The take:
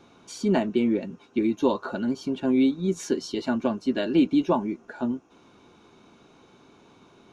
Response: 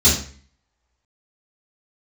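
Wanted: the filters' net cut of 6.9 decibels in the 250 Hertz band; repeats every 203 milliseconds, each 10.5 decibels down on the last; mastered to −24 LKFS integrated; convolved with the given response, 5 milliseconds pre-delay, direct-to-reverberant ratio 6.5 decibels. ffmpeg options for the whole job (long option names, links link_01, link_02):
-filter_complex "[0:a]equalizer=frequency=250:width_type=o:gain=-8.5,aecho=1:1:203|406|609:0.299|0.0896|0.0269,asplit=2[link_01][link_02];[1:a]atrim=start_sample=2205,adelay=5[link_03];[link_02][link_03]afir=irnorm=-1:irlink=0,volume=-25dB[link_04];[link_01][link_04]amix=inputs=2:normalize=0,volume=3dB"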